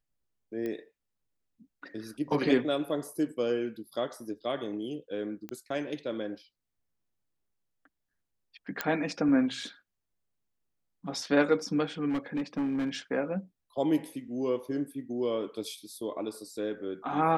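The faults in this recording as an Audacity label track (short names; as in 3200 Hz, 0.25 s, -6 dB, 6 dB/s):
0.660000	0.660000	pop -24 dBFS
5.490000	5.490000	pop -24 dBFS
8.810000	8.810000	pop -13 dBFS
12.090000	12.960000	clipped -26.5 dBFS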